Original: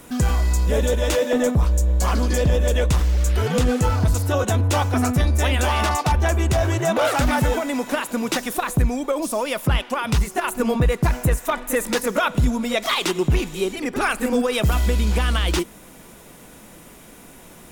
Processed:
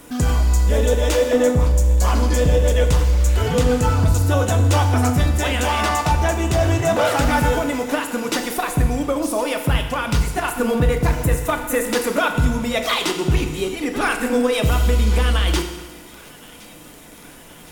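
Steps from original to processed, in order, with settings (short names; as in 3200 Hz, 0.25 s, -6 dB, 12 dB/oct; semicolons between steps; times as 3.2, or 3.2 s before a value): crackle 41/s -29 dBFS; thin delay 1.065 s, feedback 61%, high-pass 1500 Hz, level -20 dB; FDN reverb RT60 1.3 s, low-frequency decay 0.8×, high-frequency decay 0.9×, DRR 4.5 dB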